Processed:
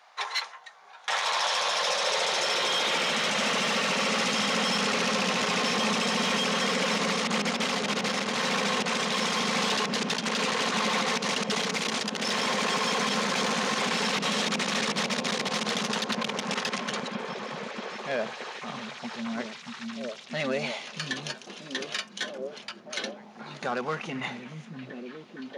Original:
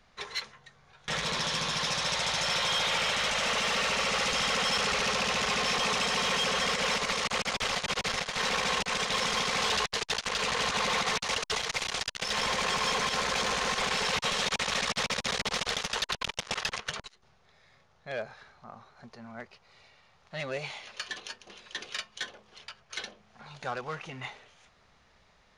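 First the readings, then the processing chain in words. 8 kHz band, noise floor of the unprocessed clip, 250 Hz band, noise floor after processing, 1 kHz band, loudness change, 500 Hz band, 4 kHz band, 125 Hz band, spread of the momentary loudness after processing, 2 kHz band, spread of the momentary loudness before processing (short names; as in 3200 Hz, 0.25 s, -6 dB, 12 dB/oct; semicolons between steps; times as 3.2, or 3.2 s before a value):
+1.5 dB, -64 dBFS, +10.0 dB, -48 dBFS, +2.5 dB, +1.5 dB, +4.5 dB, +1.5 dB, +3.5 dB, 12 LU, +2.0 dB, 14 LU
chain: delay with a stepping band-pass 0.632 s, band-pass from 170 Hz, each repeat 0.7 oct, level -0.5 dB; limiter -25.5 dBFS, peak gain reduction 7.5 dB; high-pass sweep 800 Hz -> 220 Hz, 1.29–3.39; gain +5.5 dB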